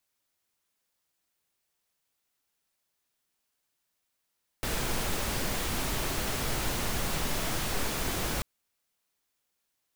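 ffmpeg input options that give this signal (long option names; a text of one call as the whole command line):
ffmpeg -f lavfi -i "anoisesrc=color=pink:amplitude=0.153:duration=3.79:sample_rate=44100:seed=1" out.wav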